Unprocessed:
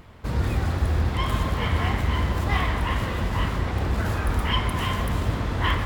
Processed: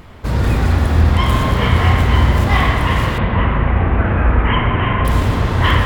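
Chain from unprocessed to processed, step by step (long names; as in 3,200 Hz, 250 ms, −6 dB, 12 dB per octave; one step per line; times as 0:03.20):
0:03.18–0:05.05: Butterworth low-pass 2,700 Hz 36 dB per octave
spring reverb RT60 1.9 s, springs 35/50 ms, chirp 30 ms, DRR 3 dB
level +8 dB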